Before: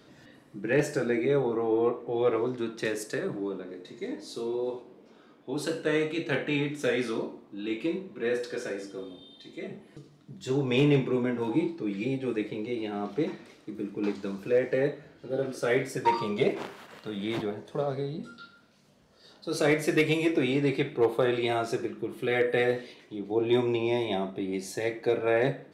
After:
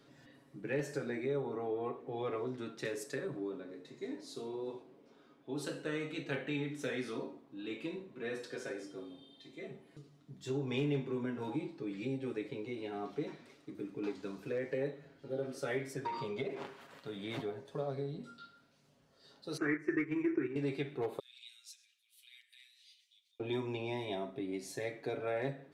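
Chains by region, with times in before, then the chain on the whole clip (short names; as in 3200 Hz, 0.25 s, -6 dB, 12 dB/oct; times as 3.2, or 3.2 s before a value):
15.93–16.81 high shelf 8100 Hz -10 dB + compressor, threshold -25 dBFS
19.57–20.56 EQ curve 120 Hz 0 dB, 240 Hz -6 dB, 340 Hz +14 dB, 560 Hz -14 dB, 1100 Hz +4 dB, 1800 Hz +11 dB, 3700 Hz -24 dB, 5900 Hz -10 dB, 13000 Hz -26 dB + gate -22 dBFS, range -8 dB
21.19–23.4 compressor, threshold -30 dBFS + inverse Chebyshev high-pass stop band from 730 Hz, stop band 70 dB
whole clip: comb 7.3 ms, depth 49%; compressor 2:1, threshold -27 dBFS; gain -8 dB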